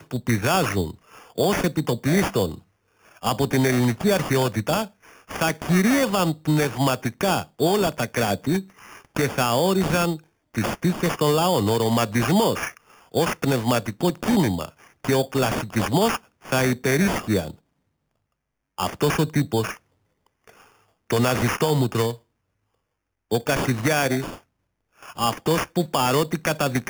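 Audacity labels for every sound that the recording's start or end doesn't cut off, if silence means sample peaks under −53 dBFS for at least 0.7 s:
18.780000	22.220000	sound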